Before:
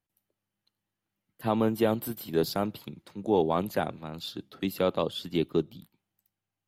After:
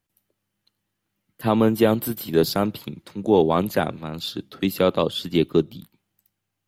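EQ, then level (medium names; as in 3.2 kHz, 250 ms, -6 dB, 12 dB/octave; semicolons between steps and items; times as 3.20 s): peaking EQ 770 Hz -3 dB 0.77 oct; +8.0 dB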